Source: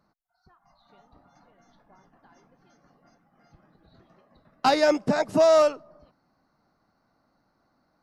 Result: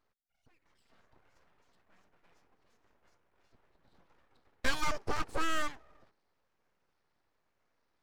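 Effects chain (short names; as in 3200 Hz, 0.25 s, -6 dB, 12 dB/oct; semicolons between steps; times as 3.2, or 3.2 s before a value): moving spectral ripple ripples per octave 1, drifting -1.1 Hz, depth 7 dB; full-wave rectifier; gain -8 dB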